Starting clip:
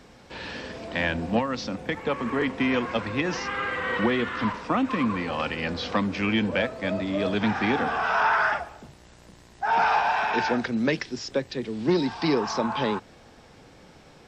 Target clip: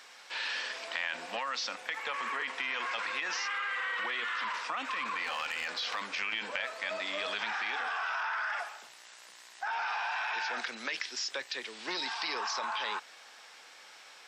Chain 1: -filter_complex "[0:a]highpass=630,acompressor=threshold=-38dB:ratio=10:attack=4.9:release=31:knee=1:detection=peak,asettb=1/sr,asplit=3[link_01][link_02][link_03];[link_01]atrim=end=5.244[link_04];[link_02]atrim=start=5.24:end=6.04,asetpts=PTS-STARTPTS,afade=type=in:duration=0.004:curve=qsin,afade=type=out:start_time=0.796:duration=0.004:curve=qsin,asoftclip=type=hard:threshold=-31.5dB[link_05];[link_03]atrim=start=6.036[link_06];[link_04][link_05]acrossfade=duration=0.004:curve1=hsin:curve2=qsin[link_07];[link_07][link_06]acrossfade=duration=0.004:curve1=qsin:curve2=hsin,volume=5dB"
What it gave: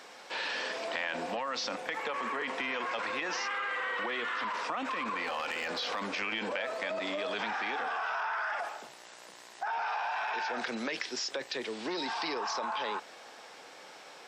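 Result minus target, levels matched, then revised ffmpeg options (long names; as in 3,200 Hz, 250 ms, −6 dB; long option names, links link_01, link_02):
500 Hz band +6.5 dB
-filter_complex "[0:a]highpass=1300,acompressor=threshold=-38dB:ratio=10:attack=4.9:release=31:knee=1:detection=peak,asettb=1/sr,asplit=3[link_01][link_02][link_03];[link_01]atrim=end=5.244[link_04];[link_02]atrim=start=5.24:end=6.04,asetpts=PTS-STARTPTS,afade=type=in:duration=0.004:curve=qsin,afade=type=out:start_time=0.796:duration=0.004:curve=qsin,asoftclip=type=hard:threshold=-31.5dB[link_05];[link_03]atrim=start=6.036[link_06];[link_04][link_05]acrossfade=duration=0.004:curve1=hsin:curve2=qsin[link_07];[link_07][link_06]acrossfade=duration=0.004:curve1=qsin:curve2=hsin,volume=5dB"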